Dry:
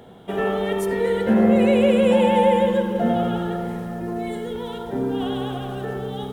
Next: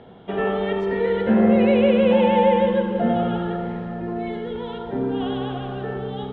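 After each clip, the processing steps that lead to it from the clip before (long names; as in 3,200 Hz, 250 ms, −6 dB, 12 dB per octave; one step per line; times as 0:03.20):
low-pass filter 3,600 Hz 24 dB per octave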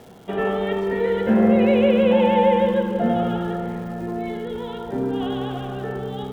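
surface crackle 380 per second −41 dBFS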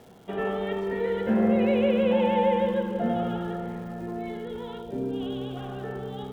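gain on a spectral selection 0:04.81–0:05.57, 710–2,200 Hz −8 dB
level −6 dB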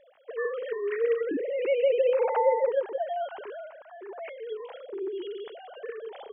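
three sine waves on the formant tracks
level −2.5 dB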